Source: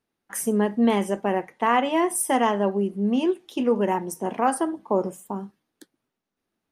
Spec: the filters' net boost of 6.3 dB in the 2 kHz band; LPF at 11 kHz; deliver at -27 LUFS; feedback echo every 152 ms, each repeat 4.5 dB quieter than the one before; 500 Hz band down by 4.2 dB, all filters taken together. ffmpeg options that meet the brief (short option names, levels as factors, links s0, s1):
-af "lowpass=11000,equalizer=f=500:t=o:g=-6,equalizer=f=2000:t=o:g=7.5,aecho=1:1:152|304|456|608|760|912|1064|1216|1368:0.596|0.357|0.214|0.129|0.0772|0.0463|0.0278|0.0167|0.01,volume=0.631"